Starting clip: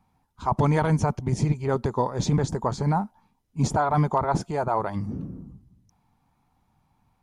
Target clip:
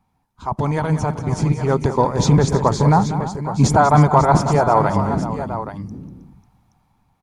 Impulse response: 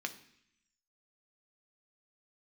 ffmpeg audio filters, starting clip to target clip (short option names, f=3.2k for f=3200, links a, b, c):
-filter_complex "[0:a]dynaudnorm=f=690:g=5:m=12dB,asplit=2[a][b];[b]aecho=0:1:193|317|544|824:0.251|0.188|0.211|0.282[c];[a][c]amix=inputs=2:normalize=0"